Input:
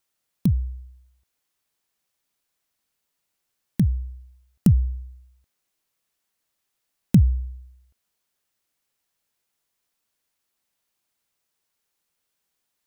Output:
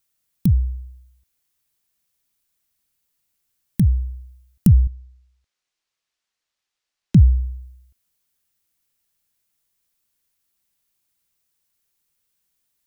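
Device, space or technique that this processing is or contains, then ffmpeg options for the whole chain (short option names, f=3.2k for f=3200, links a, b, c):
smiley-face EQ: -filter_complex "[0:a]asettb=1/sr,asplit=3[a][b][c];[a]atrim=end=4.874[d];[b]atrim=start=4.87:end=7.15,asetpts=PTS-STARTPTS,afade=t=in:d=0.004:c=qsin,afade=t=out:st=2.276:d=0.004:c=qsin,acrossover=split=400 6600:gain=0.251 1 0.0708[e][f][g];[e][f][g]amix=inputs=3:normalize=0[h];[c]atrim=start=7.146[i];[d][h]acrossfade=d=0.004:c1=hsin:c2=qsin[j];[j][i]acrossfade=d=0.004:c1=qsin:c2=hsin,lowshelf=f=150:g=7.5,equalizer=f=660:t=o:w=2.1:g=-4.5,highshelf=f=8.5k:g=7.5"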